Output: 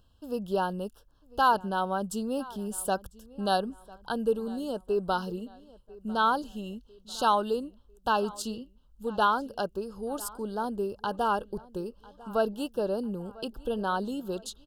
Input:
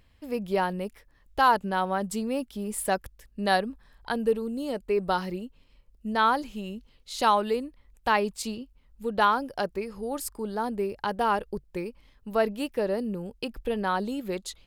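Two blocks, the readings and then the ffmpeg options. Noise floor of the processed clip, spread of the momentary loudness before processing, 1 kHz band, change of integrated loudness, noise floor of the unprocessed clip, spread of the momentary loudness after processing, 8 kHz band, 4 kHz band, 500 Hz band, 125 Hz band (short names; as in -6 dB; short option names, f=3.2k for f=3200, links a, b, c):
-61 dBFS, 14 LU, -2.0 dB, -2.0 dB, -61 dBFS, 14 LU, -2.0 dB, -2.0 dB, -2.0 dB, -2.0 dB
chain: -filter_complex "[0:a]asuperstop=centerf=2100:order=12:qfactor=1.9,asplit=2[a][b];[b]adelay=998,lowpass=f=4.5k:p=1,volume=-21dB,asplit=2[c][d];[d]adelay=998,lowpass=f=4.5k:p=1,volume=0.45,asplit=2[e][f];[f]adelay=998,lowpass=f=4.5k:p=1,volume=0.45[g];[a][c][e][g]amix=inputs=4:normalize=0,volume=-2dB"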